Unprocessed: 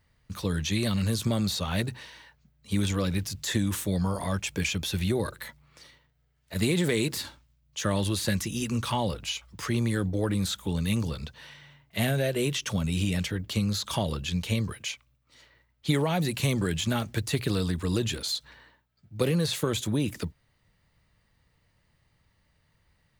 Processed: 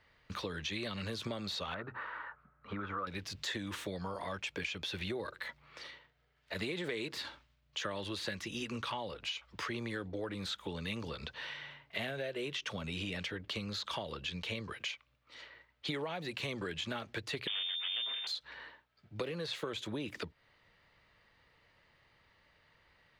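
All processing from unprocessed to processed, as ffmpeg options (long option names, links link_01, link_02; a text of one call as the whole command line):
ffmpeg -i in.wav -filter_complex "[0:a]asettb=1/sr,asplit=3[link_01][link_02][link_03];[link_01]atrim=end=1.744[link_04];[link_02]atrim=start=1.74:end=3.07,asetpts=PTS-STARTPTS,afade=type=in:duration=0.004:curve=qsin,afade=type=out:start_time=1.326:duration=0.004:curve=qsin,acompressor=threshold=-38dB:ratio=1.5:attack=3.2:release=140:knee=1:detection=peak,lowpass=frequency=1300:width_type=q:width=7.7[link_05];[link_03]atrim=start=3.066[link_06];[link_04][link_05]acrossfade=duration=0.004:curve1=hsin:curve2=qsin[link_07];[link_07][link_06]acrossfade=duration=0.004:curve1=qsin:curve2=hsin,asettb=1/sr,asplit=3[link_08][link_09][link_10];[link_08]atrim=end=17.474[link_11];[link_09]atrim=start=17.47:end=18.27,asetpts=PTS-STARTPTS,afade=type=in:duration=0.004:curve=qsin,afade=type=out:start_time=0.796:duration=0.004:curve=qsin,equalizer=frequency=850:width_type=o:width=1.1:gain=11.5,aeval=exprs='abs(val(0))':channel_layout=same,lowpass=frequency=3100:width_type=q:width=0.5098,lowpass=frequency=3100:width_type=q:width=0.6013,lowpass=frequency=3100:width_type=q:width=0.9,lowpass=frequency=3100:width_type=q:width=2.563,afreqshift=-3600[link_12];[link_10]atrim=start=18.266[link_13];[link_11][link_12]acrossfade=duration=0.004:curve1=hsin:curve2=qsin[link_14];[link_14][link_13]acrossfade=duration=0.004:curve1=qsin:curve2=hsin,acrossover=split=350 4500:gain=0.2 1 0.1[link_15][link_16][link_17];[link_15][link_16][link_17]amix=inputs=3:normalize=0,acompressor=threshold=-45dB:ratio=4,equalizer=frequency=760:width=1.5:gain=-2.5,volume=7dB" out.wav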